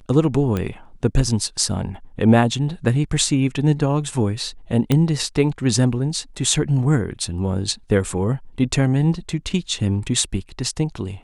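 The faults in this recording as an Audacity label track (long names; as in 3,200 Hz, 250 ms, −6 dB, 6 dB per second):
0.570000	0.570000	click −11 dBFS
4.920000	4.920000	click −5 dBFS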